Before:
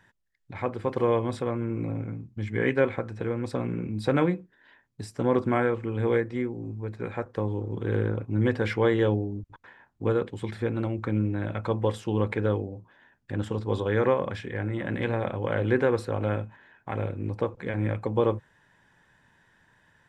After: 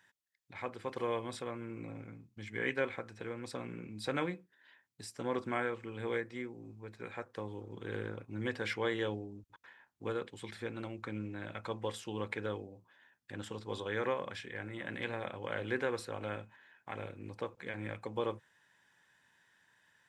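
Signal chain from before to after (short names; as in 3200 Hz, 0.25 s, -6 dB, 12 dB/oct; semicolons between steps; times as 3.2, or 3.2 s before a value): HPF 150 Hz 6 dB/oct; tilt shelf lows -6 dB, about 1500 Hz; gain -6.5 dB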